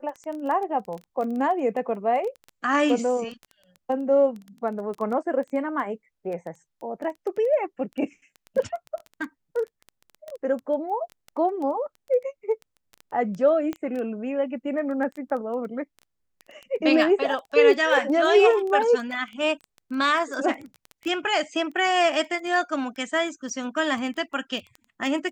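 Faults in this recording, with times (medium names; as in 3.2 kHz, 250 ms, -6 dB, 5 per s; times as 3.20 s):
crackle 10 per s -30 dBFS
13.73 s: pop -18 dBFS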